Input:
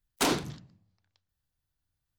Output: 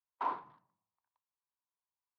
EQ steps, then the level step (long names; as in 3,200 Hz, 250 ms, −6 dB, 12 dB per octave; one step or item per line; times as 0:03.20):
resonant band-pass 1,000 Hz, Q 7.3
high-frequency loss of the air 250 metres
+4.5 dB